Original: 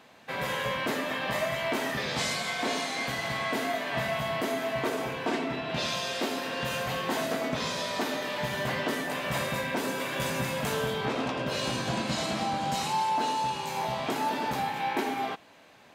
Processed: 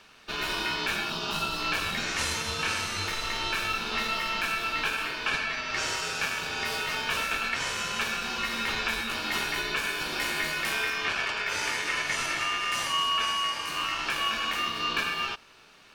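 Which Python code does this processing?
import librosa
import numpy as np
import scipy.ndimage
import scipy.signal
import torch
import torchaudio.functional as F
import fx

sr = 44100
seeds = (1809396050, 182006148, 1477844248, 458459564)

y = fx.highpass(x, sr, hz=560.0, slope=12, at=(1.1, 1.6))
y = y * np.sin(2.0 * np.pi * 2000.0 * np.arange(len(y)) / sr)
y = F.gain(torch.from_numpy(y), 3.5).numpy()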